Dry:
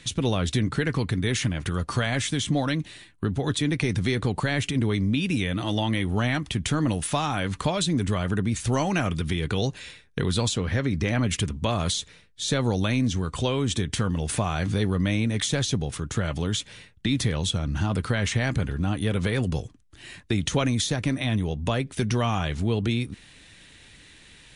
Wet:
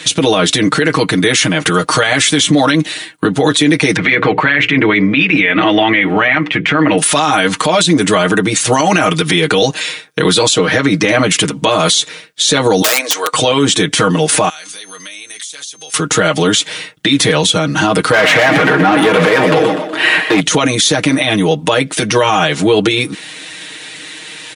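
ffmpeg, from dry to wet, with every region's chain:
ffmpeg -i in.wav -filter_complex "[0:a]asettb=1/sr,asplit=3[link_01][link_02][link_03];[link_01]atrim=end=3.964[link_04];[link_02]atrim=start=3.96:end=6.98,asetpts=PTS-STARTPTS,afade=type=in:duration=0.004:curve=qsin,afade=type=out:start_time=3.016:duration=0.004:curve=qsin,lowpass=frequency=2200:width_type=q:width=2.6,bandreject=frequency=60:width_type=h:width=6,bandreject=frequency=120:width_type=h:width=6,bandreject=frequency=180:width_type=h:width=6,bandreject=frequency=240:width_type=h:width=6,bandreject=frequency=300:width_type=h:width=6,bandreject=frequency=360:width_type=h:width=6,bandreject=frequency=420:width_type=h:width=6,bandreject=frequency=480:width_type=h:width=6,bandreject=frequency=540:width_type=h:width=6[link_05];[link_03]atrim=start=6.976[link_06];[link_04][link_05]acrossfade=duration=0.004:curve1=hsin:curve2=qsin[link_07];[link_07][link_06]acrossfade=duration=0.004:curve1=qsin:curve2=hsin,asettb=1/sr,asplit=3[link_08][link_09][link_10];[link_08]atrim=end=12.824[link_11];[link_09]atrim=start=12.82:end=13.33,asetpts=PTS-STARTPTS,afade=type=in:duration=0.004:curve=qsin,afade=type=out:start_time=0.506:duration=0.004:curve=qsin,highpass=frequency=480:width=0.5412,highpass=frequency=480:width=1.3066,aeval=exprs='(mod(16.8*val(0)+1,2)-1)/16.8':channel_layout=same[link_12];[link_10]atrim=start=13.326[link_13];[link_11][link_12]acrossfade=duration=0.004:curve1=hsin:curve2=qsin[link_14];[link_14][link_13]acrossfade=duration=0.004:curve1=qsin:curve2=hsin,asettb=1/sr,asplit=3[link_15][link_16][link_17];[link_15]atrim=end=14.494[link_18];[link_16]atrim=start=14.49:end=15.94,asetpts=PTS-STARTPTS,afade=type=in:duration=0.004:curve=qsin,afade=type=out:start_time=1.446:duration=0.004:curve=qsin,aeval=exprs='val(0)+0.002*sin(2*PI*6300*n/s)':channel_layout=same,aderivative,acompressor=threshold=-47dB:ratio=6:attack=3.2:release=140:knee=1:detection=peak[link_19];[link_17]atrim=start=15.936[link_20];[link_18][link_19]acrossfade=duration=0.004:curve1=hsin:curve2=qsin[link_21];[link_21][link_20]acrossfade=duration=0.004:curve1=qsin:curve2=hsin,asettb=1/sr,asplit=3[link_22][link_23][link_24];[link_22]atrim=end=18.124[link_25];[link_23]atrim=start=18.12:end=20.4,asetpts=PTS-STARTPTS,afade=type=in:duration=0.004:curve=qsin,afade=type=out:start_time=2.276:duration=0.004:curve=qsin,equalizer=frequency=6300:width=0.8:gain=-13.5,asplit=2[link_26][link_27];[link_27]highpass=frequency=720:poles=1,volume=26dB,asoftclip=type=tanh:threshold=-13.5dB[link_28];[link_26][link_28]amix=inputs=2:normalize=0,lowpass=frequency=2000:poles=1,volume=-6dB,asplit=5[link_29][link_30][link_31][link_32][link_33];[link_30]adelay=123,afreqshift=53,volume=-10dB[link_34];[link_31]adelay=246,afreqshift=106,volume=-17.5dB[link_35];[link_32]adelay=369,afreqshift=159,volume=-25.1dB[link_36];[link_33]adelay=492,afreqshift=212,volume=-32.6dB[link_37];[link_29][link_34][link_35][link_36][link_37]amix=inputs=5:normalize=0,atrim=end_sample=100548[link_38];[link_24]atrim=start=20.396[link_39];[link_25][link_38]acrossfade=duration=0.004:curve1=hsin:curve2=qsin[link_40];[link_40][link_39]acrossfade=duration=0.004:curve1=qsin:curve2=hsin,highpass=310,aecho=1:1:6.4:0.97,alimiter=level_in=20dB:limit=-1dB:release=50:level=0:latency=1,volume=-1dB" out.wav

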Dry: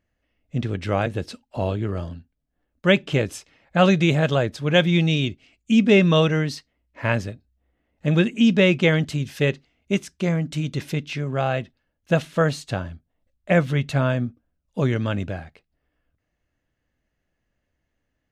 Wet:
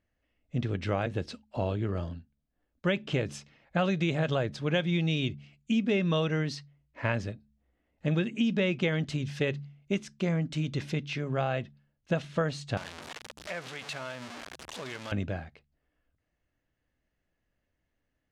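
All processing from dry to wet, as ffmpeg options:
ffmpeg -i in.wav -filter_complex "[0:a]asettb=1/sr,asplit=3[link_01][link_02][link_03];[link_01]atrim=end=12.774[link_04];[link_02]atrim=start=12.77:end=15.12,asetpts=PTS-STARTPTS,afade=type=in:duration=0.004:curve=qsin,afade=type=out:start_time=2.346:duration=0.004:curve=qsin,aeval=exprs='val(0)+0.5*0.0944*sgn(val(0))':channel_layout=same,highpass=frequency=1200:poles=1,acompressor=threshold=-32dB:ratio=2.5:attack=3.2:release=140:knee=1:detection=peak[link_05];[link_03]atrim=start=15.116[link_06];[link_04][link_05]acrossfade=duration=0.004:curve1=hsin:curve2=qsin[link_07];[link_07][link_06]acrossfade=duration=0.004:curve1=qsin:curve2=hsin,bandreject=frequency=71.49:width_type=h:width=4,bandreject=frequency=142.98:width_type=h:width=4,bandreject=frequency=214.47:width_type=h:width=4,acompressor=threshold=-20dB:ratio=6,lowpass=6600,volume=-4dB" out.wav

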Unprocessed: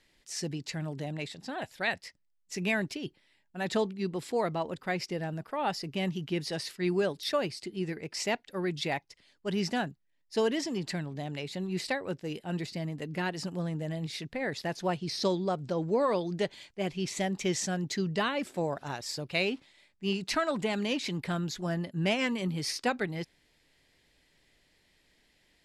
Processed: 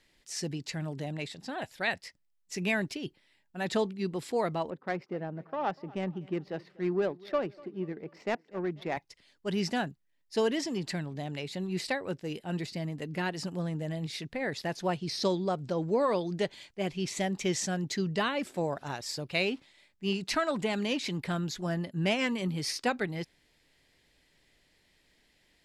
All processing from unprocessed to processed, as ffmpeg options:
ffmpeg -i in.wav -filter_complex "[0:a]asettb=1/sr,asplit=3[link_01][link_02][link_03];[link_01]atrim=end=4.704[link_04];[link_02]atrim=start=4.7:end=8.97,asetpts=PTS-STARTPTS,afade=type=in:duration=0.004:curve=qsin,afade=type=out:start_time=4.266:duration=0.004:curve=qsin,highpass=180,adynamicsmooth=sensitivity=1.5:basefreq=1000,aecho=1:1:244|488|732:0.075|0.0345|0.0159,atrim=end_sample=188307[link_05];[link_03]atrim=start=8.966[link_06];[link_04][link_05]acrossfade=duration=0.004:curve1=hsin:curve2=qsin[link_07];[link_07][link_06]acrossfade=duration=0.004:curve1=qsin:curve2=hsin" out.wav

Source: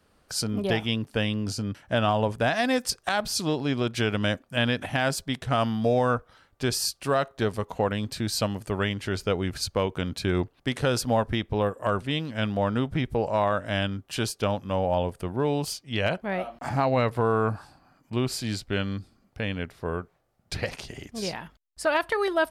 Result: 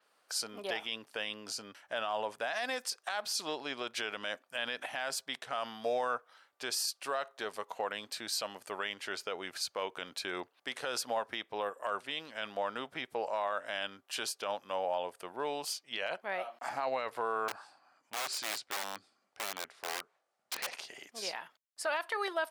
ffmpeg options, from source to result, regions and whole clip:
ffmpeg -i in.wav -filter_complex "[0:a]asettb=1/sr,asplit=3[link_01][link_02][link_03];[link_01]atrim=end=17.484[link_04];[link_02]atrim=start=17.48:end=20.73,asetpts=PTS-STARTPTS,afade=type=in:duration=0.004:curve=qsin,afade=type=out:start_time=3.246:duration=0.004:curve=qsin,lowpass=frequency=10000:width=0.5412,lowpass=frequency=10000:width=1.3066,aeval=exprs='(mod(16.8*val(0)+1,2)-1)/16.8':channel_layout=same[link_05];[link_03]atrim=start=20.726[link_06];[link_04][link_05]acrossfade=duration=0.004:curve1=hsin:curve2=qsin[link_07];[link_07][link_06]acrossfade=duration=0.004:curve1=qsin:curve2=hsin,highpass=650,alimiter=limit=-20dB:level=0:latency=1:release=34,adynamicequalizer=threshold=0.00501:dfrequency=7200:dqfactor=0.7:tfrequency=7200:tqfactor=0.7:attack=5:release=100:ratio=0.375:range=1.5:mode=cutabove:tftype=highshelf,volume=-3.5dB" out.wav

